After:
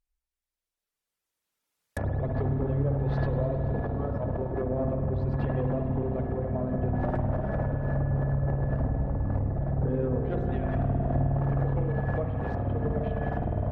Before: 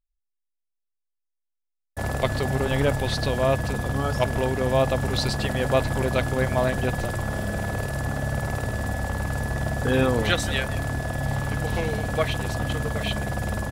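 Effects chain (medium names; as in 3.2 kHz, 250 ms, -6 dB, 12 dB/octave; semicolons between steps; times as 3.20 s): single-diode clipper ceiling -24 dBFS; recorder AGC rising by 9.7 dB/s; feedback echo behind a low-pass 71 ms, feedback 49%, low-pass 3.3 kHz, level -6.5 dB; low-pass that closes with the level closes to 570 Hz, closed at -20.5 dBFS; peak limiter -20 dBFS, peak gain reduction 8.5 dB; reverb removal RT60 0.87 s; spring tank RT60 3.9 s, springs 51 ms, chirp 55 ms, DRR 4 dB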